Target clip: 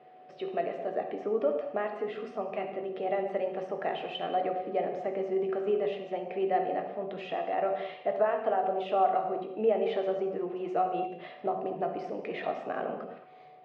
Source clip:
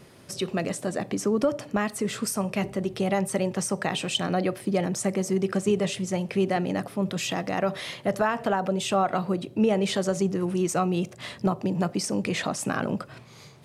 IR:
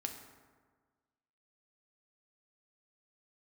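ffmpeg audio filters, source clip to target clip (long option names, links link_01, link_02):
-filter_complex "[0:a]aeval=exprs='val(0)+0.00158*sin(2*PI*740*n/s)':channel_layout=same,highpass=410,equalizer=frequency=420:width_type=q:width=4:gain=5,equalizer=frequency=690:width_type=q:width=4:gain=9,equalizer=frequency=980:width_type=q:width=4:gain=-7,equalizer=frequency=1500:width_type=q:width=4:gain=-6,equalizer=frequency=2300:width_type=q:width=4:gain=-4,lowpass=frequency=2600:width=0.5412,lowpass=frequency=2600:width=1.3066[link_01];[1:a]atrim=start_sample=2205,atrim=end_sample=6174,asetrate=25137,aresample=44100[link_02];[link_01][link_02]afir=irnorm=-1:irlink=0,volume=-6.5dB"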